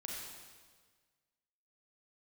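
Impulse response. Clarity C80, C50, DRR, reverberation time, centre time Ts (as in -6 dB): 1.0 dB, -1.0 dB, -3.0 dB, 1.5 s, 92 ms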